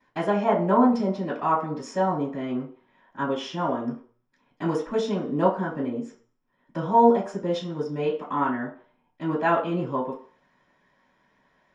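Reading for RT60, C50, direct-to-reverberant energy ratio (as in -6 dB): 0.50 s, 8.5 dB, -15.0 dB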